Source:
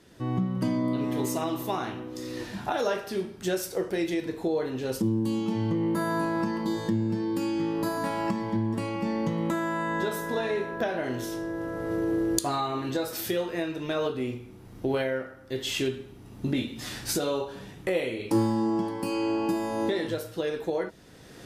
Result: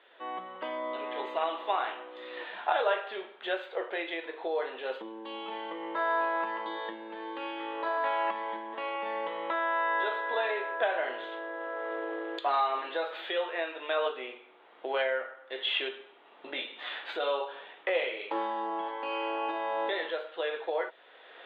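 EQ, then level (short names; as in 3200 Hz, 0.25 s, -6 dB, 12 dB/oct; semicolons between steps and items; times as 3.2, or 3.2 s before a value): HPF 540 Hz 24 dB/oct; elliptic low-pass 3500 Hz, stop band 40 dB; +3.0 dB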